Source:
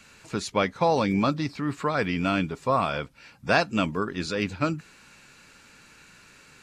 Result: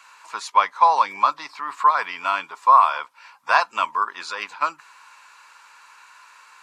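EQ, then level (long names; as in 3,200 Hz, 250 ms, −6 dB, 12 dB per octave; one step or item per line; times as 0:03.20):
high-pass with resonance 1,000 Hz, resonance Q 7.1
0.0 dB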